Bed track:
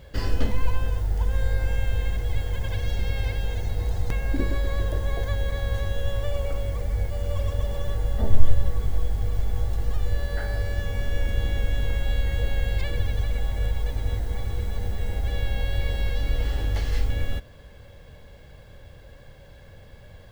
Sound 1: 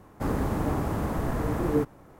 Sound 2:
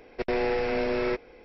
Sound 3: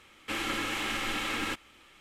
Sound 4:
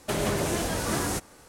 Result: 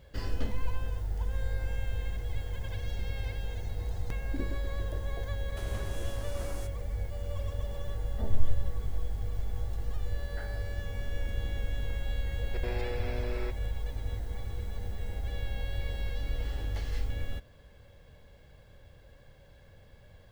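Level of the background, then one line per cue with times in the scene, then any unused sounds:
bed track −8.5 dB
0:05.48: mix in 4 −18 dB
0:12.35: mix in 2 −12 dB + notch filter 2,900 Hz
not used: 1, 3

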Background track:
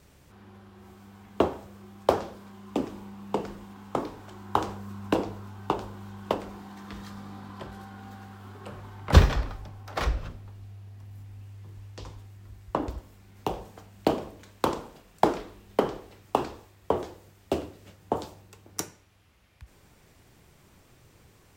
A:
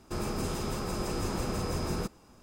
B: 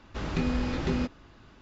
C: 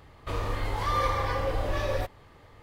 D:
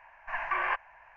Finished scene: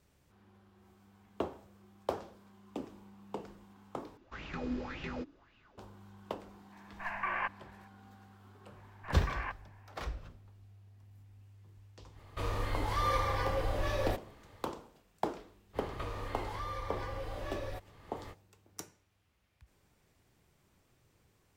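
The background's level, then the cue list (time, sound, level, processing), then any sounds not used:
background track −12.5 dB
0:04.17: overwrite with B −15 dB + auto-filter bell 1.8 Hz 280–2,800 Hz +17 dB
0:06.72: mix in D −5 dB
0:08.76: mix in D −10.5 dB
0:12.10: mix in C −4.5 dB, fades 0.10 s + high-shelf EQ 5,300 Hz +3 dB
0:15.73: mix in C −12.5 dB, fades 0.05 s + multiband upward and downward compressor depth 100%
not used: A

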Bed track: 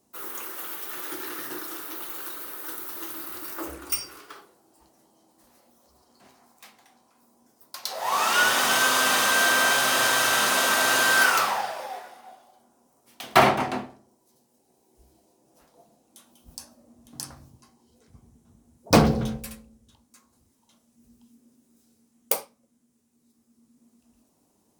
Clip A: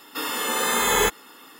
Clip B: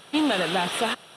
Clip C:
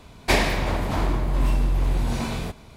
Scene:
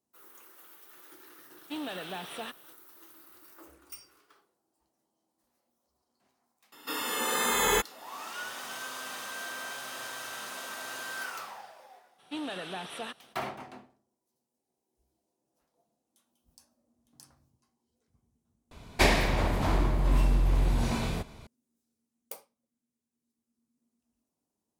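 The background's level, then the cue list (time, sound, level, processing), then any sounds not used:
bed track −18.5 dB
0:01.57: mix in B −14.5 dB
0:06.72: mix in A −5.5 dB
0:12.18: mix in B −14 dB, fades 0.02 s
0:18.71: overwrite with C −3 dB

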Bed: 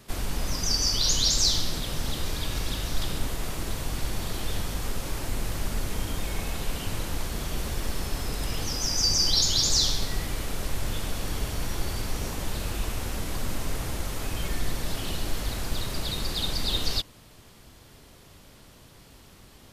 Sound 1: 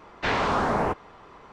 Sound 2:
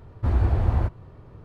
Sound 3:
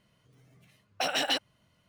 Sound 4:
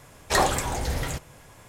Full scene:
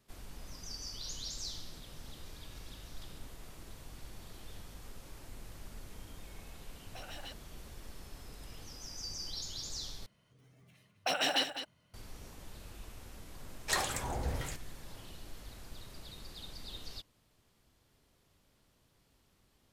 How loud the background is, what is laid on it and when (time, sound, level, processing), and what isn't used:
bed −19 dB
0:05.95: mix in 3 −13 dB + brickwall limiter −26.5 dBFS
0:10.06: overwrite with 3 −2.5 dB + single-tap delay 206 ms −10.5 dB
0:13.38: mix in 4 −6.5 dB + two-band tremolo in antiphase 1.2 Hz, crossover 1,400 Hz
not used: 1, 2

